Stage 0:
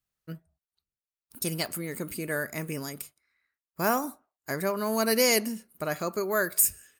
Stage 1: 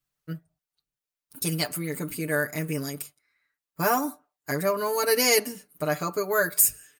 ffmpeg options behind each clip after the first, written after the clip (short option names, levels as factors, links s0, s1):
-af "aecho=1:1:6.8:0.94"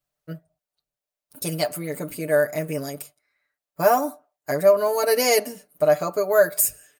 -af "equalizer=f=620:w=2.3:g=13,volume=0.891"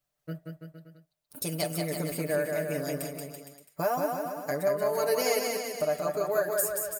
-af "acompressor=threshold=0.02:ratio=2,aecho=1:1:180|333|463|573.6|667.6:0.631|0.398|0.251|0.158|0.1"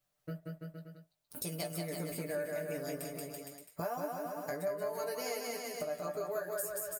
-filter_complex "[0:a]acompressor=threshold=0.00891:ratio=2.5,asplit=2[s0][s1];[s1]adelay=17,volume=0.473[s2];[s0][s2]amix=inputs=2:normalize=0"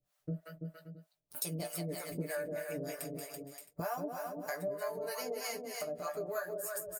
-filter_complex "[0:a]acrossover=split=580[s0][s1];[s0]aeval=exprs='val(0)*(1-1/2+1/2*cos(2*PI*3.2*n/s))':c=same[s2];[s1]aeval=exprs='val(0)*(1-1/2-1/2*cos(2*PI*3.2*n/s))':c=same[s3];[s2][s3]amix=inputs=2:normalize=0,volume=1.68"